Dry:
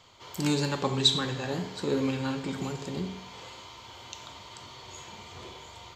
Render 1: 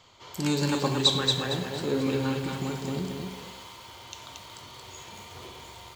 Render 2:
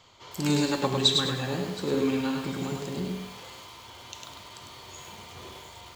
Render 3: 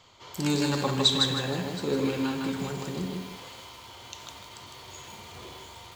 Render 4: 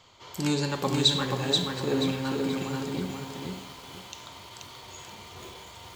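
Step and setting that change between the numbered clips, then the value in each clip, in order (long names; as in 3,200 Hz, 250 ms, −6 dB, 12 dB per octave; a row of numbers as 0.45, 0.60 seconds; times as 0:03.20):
feedback echo at a low word length, delay time: 228, 102, 156, 481 milliseconds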